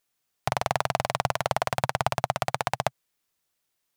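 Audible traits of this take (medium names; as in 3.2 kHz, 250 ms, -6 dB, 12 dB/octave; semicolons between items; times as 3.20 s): noise floor -79 dBFS; spectral tilt -4.0 dB/octave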